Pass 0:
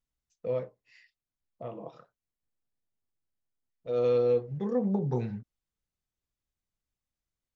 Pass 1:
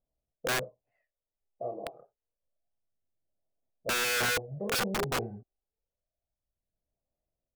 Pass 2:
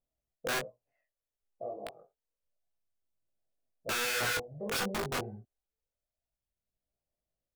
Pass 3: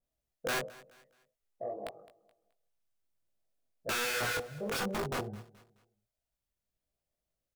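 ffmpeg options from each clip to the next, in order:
ffmpeg -i in.wav -af "aphaser=in_gain=1:out_gain=1:delay=2.6:decay=0.53:speed=0.28:type=sinusoidal,lowpass=frequency=640:width_type=q:width=4.9,aeval=exprs='(mod(10*val(0)+1,2)-1)/10':channel_layout=same,volume=-4.5dB" out.wav
ffmpeg -i in.wav -af "flanger=delay=18:depth=2.6:speed=2.6" out.wav
ffmpeg -i in.wav -af "asoftclip=type=tanh:threshold=-26dB,aecho=1:1:213|426|639:0.1|0.034|0.0116,adynamicequalizer=threshold=0.00355:dfrequency=1500:dqfactor=0.7:tfrequency=1500:tqfactor=0.7:attack=5:release=100:ratio=0.375:range=2.5:mode=cutabove:tftype=highshelf,volume=1.5dB" out.wav

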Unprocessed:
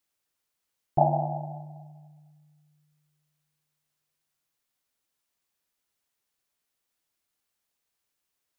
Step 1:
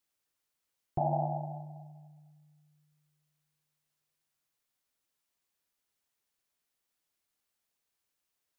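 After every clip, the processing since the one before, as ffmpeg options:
ffmpeg -i in.wav -af "alimiter=limit=-18dB:level=0:latency=1:release=56,volume=-2.5dB" out.wav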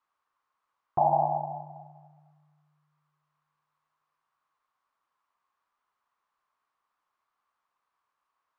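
ffmpeg -i in.wav -af "crystalizer=i=7:c=0,lowpass=frequency=1100:width_type=q:width=5.4,tiltshelf=frequency=640:gain=-4" out.wav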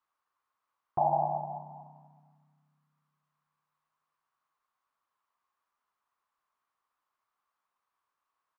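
ffmpeg -i in.wav -filter_complex "[0:a]asplit=5[link_01][link_02][link_03][link_04][link_05];[link_02]adelay=184,afreqshift=33,volume=-18dB[link_06];[link_03]adelay=368,afreqshift=66,volume=-24.6dB[link_07];[link_04]adelay=552,afreqshift=99,volume=-31.1dB[link_08];[link_05]adelay=736,afreqshift=132,volume=-37.7dB[link_09];[link_01][link_06][link_07][link_08][link_09]amix=inputs=5:normalize=0,volume=-3.5dB" out.wav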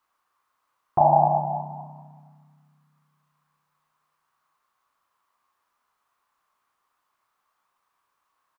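ffmpeg -i in.wav -filter_complex "[0:a]asplit=2[link_01][link_02];[link_02]adelay=33,volume=-6.5dB[link_03];[link_01][link_03]amix=inputs=2:normalize=0,volume=9dB" out.wav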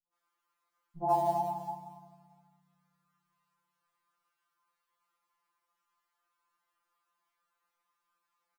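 ffmpeg -i in.wav -filter_complex "[0:a]asplit=2[link_01][link_02];[link_02]acrusher=bits=5:mode=log:mix=0:aa=0.000001,volume=-5dB[link_03];[link_01][link_03]amix=inputs=2:normalize=0,acrossover=split=160|680[link_04][link_05][link_06];[link_05]adelay=60[link_07];[link_06]adelay=130[link_08];[link_04][link_07][link_08]amix=inputs=3:normalize=0,afftfilt=real='re*2.83*eq(mod(b,8),0)':imag='im*2.83*eq(mod(b,8),0)':win_size=2048:overlap=0.75,volume=-7.5dB" out.wav

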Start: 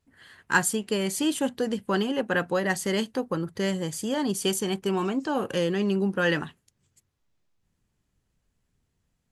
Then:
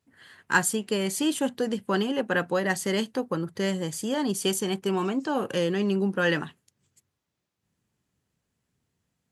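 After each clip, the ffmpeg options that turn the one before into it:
ffmpeg -i in.wav -af "highpass=98" out.wav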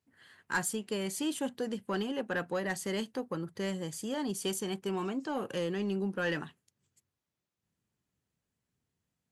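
ffmpeg -i in.wav -af "asoftclip=type=tanh:threshold=-15dB,volume=-7dB" out.wav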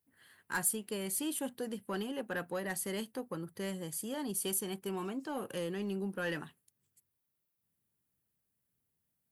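ffmpeg -i in.wav -af "aexciter=amount=4.1:drive=6.6:freq=9200,volume=-4dB" out.wav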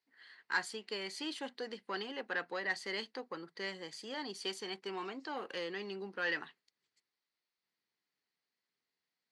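ffmpeg -i in.wav -af "highpass=420,equalizer=frequency=590:width_type=q:width=4:gain=-5,equalizer=frequency=2000:width_type=q:width=4:gain=7,equalizer=frequency=4400:width_type=q:width=4:gain=9,lowpass=frequency=5600:width=0.5412,lowpass=frequency=5600:width=1.3066,volume=1dB" out.wav

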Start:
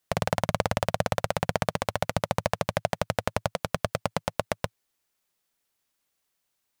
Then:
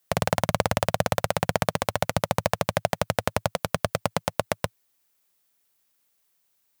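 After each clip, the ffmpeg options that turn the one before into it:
ffmpeg -i in.wav -af "highpass=56,highshelf=frequency=11000:gain=9,volume=2.5dB" out.wav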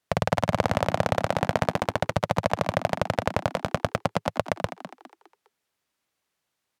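ffmpeg -i in.wav -filter_complex "[0:a]aemphasis=mode=reproduction:type=50fm,asplit=5[link_01][link_02][link_03][link_04][link_05];[link_02]adelay=204,afreqshift=77,volume=-11.5dB[link_06];[link_03]adelay=408,afreqshift=154,volume=-20.1dB[link_07];[link_04]adelay=612,afreqshift=231,volume=-28.8dB[link_08];[link_05]adelay=816,afreqshift=308,volume=-37.4dB[link_09];[link_01][link_06][link_07][link_08][link_09]amix=inputs=5:normalize=0" out.wav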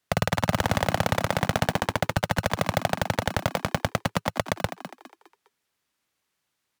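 ffmpeg -i in.wav -filter_complex "[0:a]acrossover=split=620|2800[link_01][link_02][link_03];[link_01]acrusher=samples=32:mix=1:aa=0.000001[link_04];[link_04][link_02][link_03]amix=inputs=3:normalize=0,aeval=exprs='0.237*(abs(mod(val(0)/0.237+3,4)-2)-1)':channel_layout=same,volume=2dB" out.wav

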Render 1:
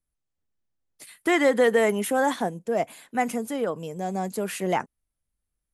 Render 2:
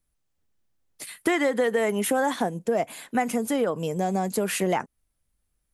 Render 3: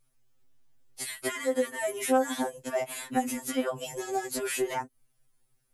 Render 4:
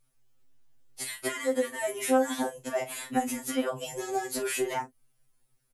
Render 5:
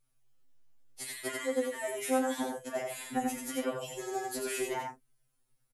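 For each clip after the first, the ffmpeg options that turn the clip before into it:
ffmpeg -i in.wav -af "acompressor=threshold=-28dB:ratio=5,volume=7dB" out.wav
ffmpeg -i in.wav -filter_complex "[0:a]acrossover=split=1000|6400[link_01][link_02][link_03];[link_01]acompressor=threshold=-33dB:ratio=4[link_04];[link_02]acompressor=threshold=-41dB:ratio=4[link_05];[link_03]acompressor=threshold=-40dB:ratio=4[link_06];[link_04][link_05][link_06]amix=inputs=3:normalize=0,afftfilt=real='re*2.45*eq(mod(b,6),0)':imag='im*2.45*eq(mod(b,6),0)':win_size=2048:overlap=0.75,volume=6.5dB" out.wav
ffmpeg -i in.wav -filter_complex "[0:a]asplit=2[link_01][link_02];[link_02]adelay=38,volume=-11dB[link_03];[link_01][link_03]amix=inputs=2:normalize=0" out.wav
ffmpeg -i in.wav -af "aecho=1:1:89:0.631,volume=-5.5dB" out.wav

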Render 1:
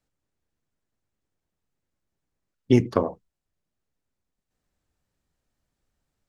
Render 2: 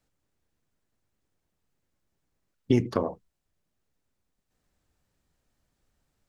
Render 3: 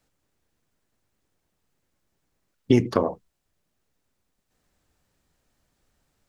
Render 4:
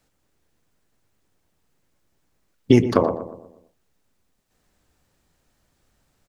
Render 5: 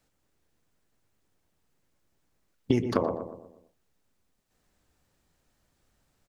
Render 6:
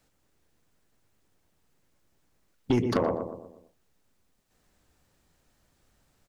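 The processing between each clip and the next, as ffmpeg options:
ffmpeg -i in.wav -af "alimiter=limit=-14.5dB:level=0:latency=1:release=293,volume=3.5dB" out.wav
ffmpeg -i in.wav -af "lowshelf=frequency=200:gain=-3.5,volume=5.5dB" out.wav
ffmpeg -i in.wav -filter_complex "[0:a]asplit=2[link_01][link_02];[link_02]adelay=120,lowpass=frequency=1300:poles=1,volume=-10dB,asplit=2[link_03][link_04];[link_04]adelay=120,lowpass=frequency=1300:poles=1,volume=0.47,asplit=2[link_05][link_06];[link_06]adelay=120,lowpass=frequency=1300:poles=1,volume=0.47,asplit=2[link_07][link_08];[link_08]adelay=120,lowpass=frequency=1300:poles=1,volume=0.47,asplit=2[link_09][link_10];[link_10]adelay=120,lowpass=frequency=1300:poles=1,volume=0.47[link_11];[link_01][link_03][link_05][link_07][link_09][link_11]amix=inputs=6:normalize=0,volume=4dB" out.wav
ffmpeg -i in.wav -af "acompressor=threshold=-16dB:ratio=4,volume=-4.5dB" out.wav
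ffmpeg -i in.wav -af "asoftclip=type=tanh:threshold=-19.5dB,volume=3.5dB" out.wav

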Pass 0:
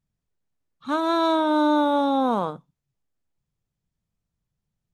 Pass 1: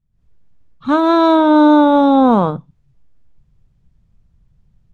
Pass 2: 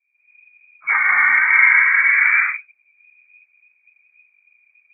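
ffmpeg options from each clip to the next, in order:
ffmpeg -i in.wav -af "dynaudnorm=framelen=120:gausssize=3:maxgain=16.5dB,aemphasis=mode=reproduction:type=bsi,volume=-2dB" out.wav
ffmpeg -i in.wav -af "afftfilt=real='hypot(re,im)*cos(2*PI*random(0))':imag='hypot(re,im)*sin(2*PI*random(1))':win_size=512:overlap=0.75,lowpass=frequency=2100:width_type=q:width=0.5098,lowpass=frequency=2100:width_type=q:width=0.6013,lowpass=frequency=2100:width_type=q:width=0.9,lowpass=frequency=2100:width_type=q:width=2.563,afreqshift=-2500,volume=2.5dB" out.wav

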